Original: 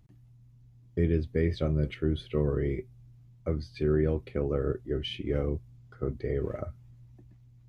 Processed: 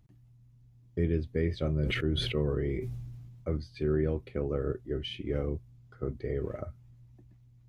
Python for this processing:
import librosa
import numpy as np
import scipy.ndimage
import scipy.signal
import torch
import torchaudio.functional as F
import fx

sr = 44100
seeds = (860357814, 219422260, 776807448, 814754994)

y = fx.sustainer(x, sr, db_per_s=31.0, at=(1.57, 3.57))
y = y * 10.0 ** (-2.5 / 20.0)